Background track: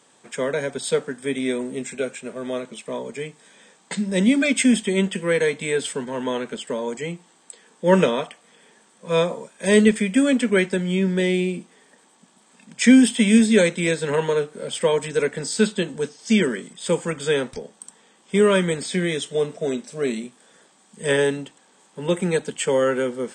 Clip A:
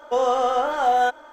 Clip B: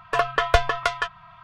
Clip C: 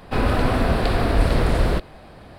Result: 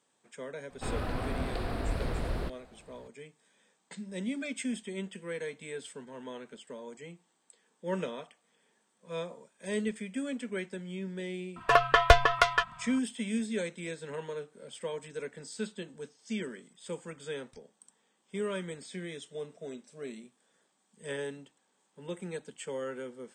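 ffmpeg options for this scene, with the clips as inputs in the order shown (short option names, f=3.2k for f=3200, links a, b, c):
-filter_complex "[0:a]volume=-17.5dB[a];[3:a]atrim=end=2.38,asetpts=PTS-STARTPTS,volume=-14.5dB,afade=t=in:d=0.004:c=hsin,afade=t=out:st=2.376:d=0.004:c=hsin,adelay=700[b];[2:a]atrim=end=1.43,asetpts=PTS-STARTPTS,volume=-0.5dB,afade=t=in:d=0.004:c=hsin,afade=t=out:st=1.426:d=0.004:c=hsin,adelay=11560[c];[a][b][c]amix=inputs=3:normalize=0"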